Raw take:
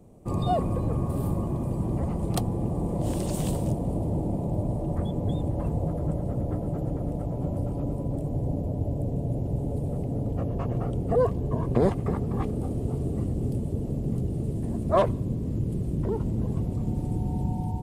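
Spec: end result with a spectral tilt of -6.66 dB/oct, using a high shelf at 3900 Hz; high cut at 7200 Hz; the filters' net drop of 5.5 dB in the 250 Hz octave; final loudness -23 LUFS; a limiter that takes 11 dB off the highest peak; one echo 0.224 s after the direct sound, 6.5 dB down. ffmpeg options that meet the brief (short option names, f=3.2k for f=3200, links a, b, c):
-af "lowpass=7.2k,equalizer=f=250:t=o:g=-8.5,highshelf=f=3.9k:g=3.5,alimiter=limit=-21.5dB:level=0:latency=1,aecho=1:1:224:0.473,volume=8.5dB"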